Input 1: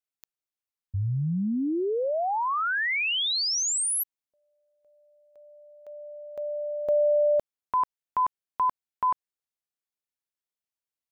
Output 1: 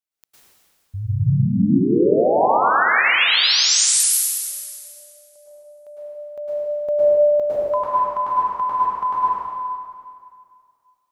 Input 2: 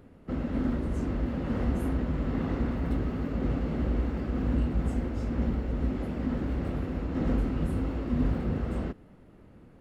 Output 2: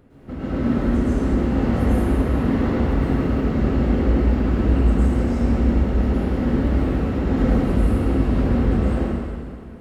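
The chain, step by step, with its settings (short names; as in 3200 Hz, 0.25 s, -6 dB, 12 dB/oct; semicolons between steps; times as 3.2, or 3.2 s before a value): plate-style reverb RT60 2.2 s, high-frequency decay 0.9×, pre-delay 95 ms, DRR -10 dB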